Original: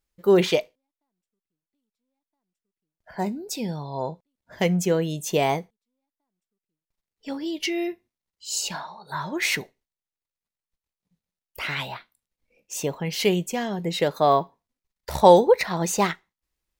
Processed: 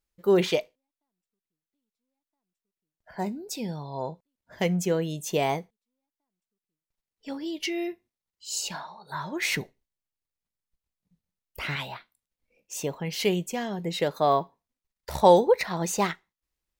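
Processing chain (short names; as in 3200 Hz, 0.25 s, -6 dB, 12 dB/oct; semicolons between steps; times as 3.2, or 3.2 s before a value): 9.48–11.76 low shelf 270 Hz +9 dB; gain -3.5 dB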